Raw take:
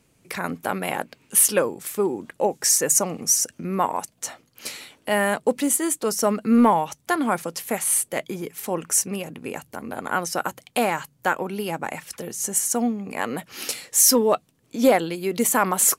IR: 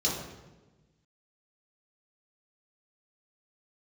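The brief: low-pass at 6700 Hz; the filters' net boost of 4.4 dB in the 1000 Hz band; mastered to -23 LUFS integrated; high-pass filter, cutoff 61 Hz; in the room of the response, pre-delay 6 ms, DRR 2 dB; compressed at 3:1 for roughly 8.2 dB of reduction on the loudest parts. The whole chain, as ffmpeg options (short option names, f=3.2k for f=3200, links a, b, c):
-filter_complex "[0:a]highpass=61,lowpass=6.7k,equalizer=f=1k:t=o:g=5.5,acompressor=threshold=-21dB:ratio=3,asplit=2[a][b];[1:a]atrim=start_sample=2205,adelay=6[c];[b][c]afir=irnorm=-1:irlink=0,volume=-11dB[d];[a][d]amix=inputs=2:normalize=0,volume=0.5dB"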